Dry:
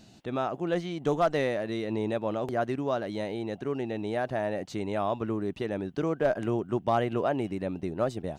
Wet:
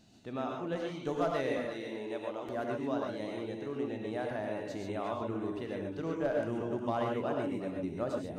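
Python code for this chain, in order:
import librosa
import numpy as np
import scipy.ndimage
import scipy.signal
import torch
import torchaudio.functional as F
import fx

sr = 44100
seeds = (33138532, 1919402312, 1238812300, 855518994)

p1 = fx.highpass(x, sr, hz=490.0, slope=6, at=(1.59, 2.47))
p2 = p1 + fx.echo_single(p1, sr, ms=358, db=-13.0, dry=0)
p3 = fx.rev_gated(p2, sr, seeds[0], gate_ms=160, shape='rising', drr_db=0.0)
y = p3 * librosa.db_to_amplitude(-8.5)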